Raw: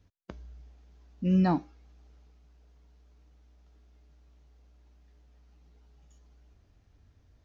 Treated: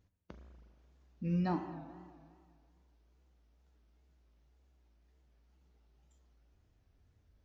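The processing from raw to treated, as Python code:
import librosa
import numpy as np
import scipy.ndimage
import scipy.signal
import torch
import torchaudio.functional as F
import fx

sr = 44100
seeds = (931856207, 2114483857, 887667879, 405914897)

y = fx.rev_spring(x, sr, rt60_s=2.0, pass_ms=(36, 41), chirp_ms=55, drr_db=6.5)
y = fx.wow_flutter(y, sr, seeds[0], rate_hz=2.1, depth_cents=120.0)
y = y * librosa.db_to_amplitude(-8.0)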